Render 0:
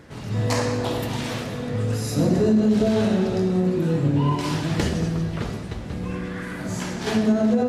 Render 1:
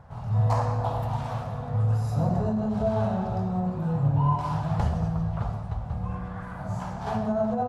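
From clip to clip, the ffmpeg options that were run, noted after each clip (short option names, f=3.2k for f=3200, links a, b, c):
-af "firequalizer=gain_entry='entry(110,0);entry(310,-23);entry(730,2);entry(1200,-4);entry(1900,-18);entry(5700,-20)':delay=0.05:min_phase=1,volume=2.5dB"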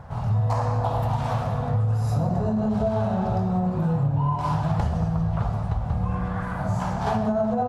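-af "acompressor=threshold=-28dB:ratio=6,volume=8dB"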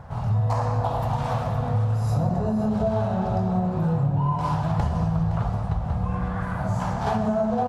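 -af "aecho=1:1:515:0.251"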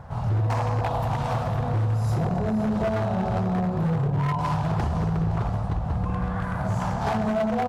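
-af "aeval=exprs='0.119*(abs(mod(val(0)/0.119+3,4)-2)-1)':c=same"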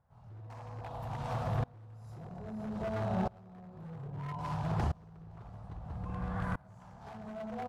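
-af "aeval=exprs='val(0)*pow(10,-27*if(lt(mod(-0.61*n/s,1),2*abs(-0.61)/1000),1-mod(-0.61*n/s,1)/(2*abs(-0.61)/1000),(mod(-0.61*n/s,1)-2*abs(-0.61)/1000)/(1-2*abs(-0.61)/1000))/20)':c=same,volume=-5dB"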